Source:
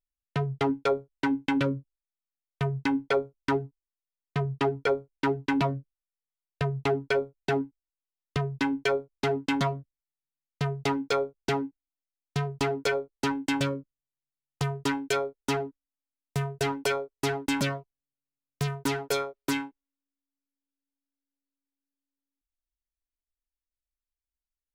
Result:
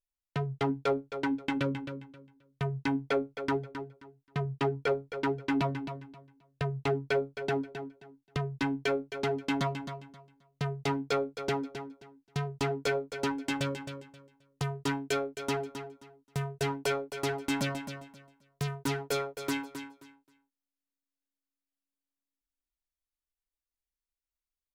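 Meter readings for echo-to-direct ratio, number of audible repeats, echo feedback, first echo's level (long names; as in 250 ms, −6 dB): −9.5 dB, 2, 22%, −9.5 dB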